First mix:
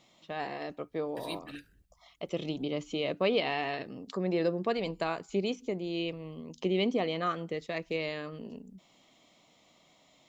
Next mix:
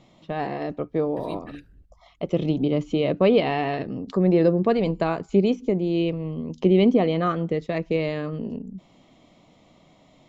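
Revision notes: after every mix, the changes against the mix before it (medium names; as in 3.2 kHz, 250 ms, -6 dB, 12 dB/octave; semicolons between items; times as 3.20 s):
first voice +6.5 dB; master: add tilt EQ -3 dB/octave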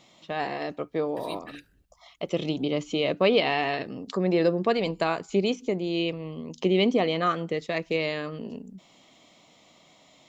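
master: add tilt EQ +3 dB/octave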